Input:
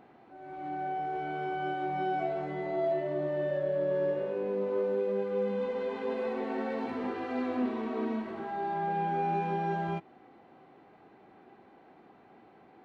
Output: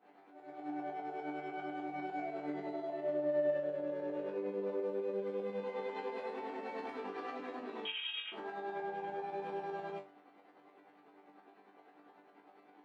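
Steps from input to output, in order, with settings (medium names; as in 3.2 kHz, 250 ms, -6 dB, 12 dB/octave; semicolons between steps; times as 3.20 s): tremolo saw up 10 Hz, depth 85%; peak limiter -29.5 dBFS, peak gain reduction 7.5 dB; 7.85–8.32 s: frequency inversion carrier 3.5 kHz; Bessel high-pass 300 Hz, order 4; chord resonator G2 fifth, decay 0.27 s; trim +12 dB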